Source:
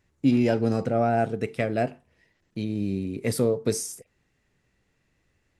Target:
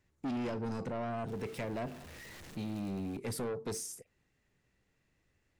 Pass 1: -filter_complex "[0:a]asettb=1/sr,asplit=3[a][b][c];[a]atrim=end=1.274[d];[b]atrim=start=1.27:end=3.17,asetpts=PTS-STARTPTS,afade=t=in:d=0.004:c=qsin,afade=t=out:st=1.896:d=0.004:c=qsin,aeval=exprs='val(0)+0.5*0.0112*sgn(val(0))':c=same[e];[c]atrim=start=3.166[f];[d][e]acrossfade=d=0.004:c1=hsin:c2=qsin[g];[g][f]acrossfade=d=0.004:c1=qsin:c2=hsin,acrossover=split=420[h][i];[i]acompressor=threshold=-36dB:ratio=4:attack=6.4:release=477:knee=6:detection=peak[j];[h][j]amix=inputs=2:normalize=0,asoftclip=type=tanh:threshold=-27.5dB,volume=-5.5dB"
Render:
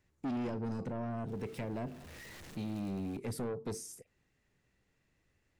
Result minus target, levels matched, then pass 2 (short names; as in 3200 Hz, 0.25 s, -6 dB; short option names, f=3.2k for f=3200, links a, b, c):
compressor: peak gain reduction +7 dB
-filter_complex "[0:a]asettb=1/sr,asplit=3[a][b][c];[a]atrim=end=1.274[d];[b]atrim=start=1.27:end=3.17,asetpts=PTS-STARTPTS,afade=t=in:d=0.004:c=qsin,afade=t=out:st=1.896:d=0.004:c=qsin,aeval=exprs='val(0)+0.5*0.0112*sgn(val(0))':c=same[e];[c]atrim=start=3.166[f];[d][e]acrossfade=d=0.004:c1=hsin:c2=qsin[g];[g][f]acrossfade=d=0.004:c1=qsin:c2=hsin,acrossover=split=420[h][i];[i]acompressor=threshold=-26.5dB:ratio=4:attack=6.4:release=477:knee=6:detection=peak[j];[h][j]amix=inputs=2:normalize=0,asoftclip=type=tanh:threshold=-27.5dB,volume=-5.5dB"